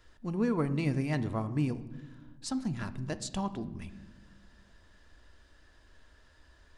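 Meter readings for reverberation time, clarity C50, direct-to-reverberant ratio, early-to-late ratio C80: 1.2 s, 15.0 dB, 10.0 dB, 17.0 dB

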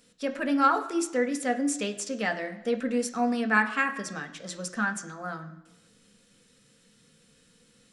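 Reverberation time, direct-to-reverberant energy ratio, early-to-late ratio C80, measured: 1.0 s, 5.0 dB, 15.0 dB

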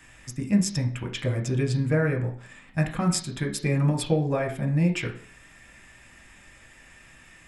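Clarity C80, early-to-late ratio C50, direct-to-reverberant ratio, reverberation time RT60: 15.0 dB, 10.5 dB, 2.0 dB, 0.45 s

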